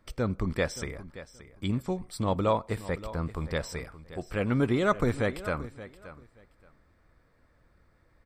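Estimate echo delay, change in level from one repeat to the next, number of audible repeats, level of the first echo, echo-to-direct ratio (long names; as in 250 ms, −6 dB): 575 ms, −14.5 dB, 2, −15.5 dB, −15.5 dB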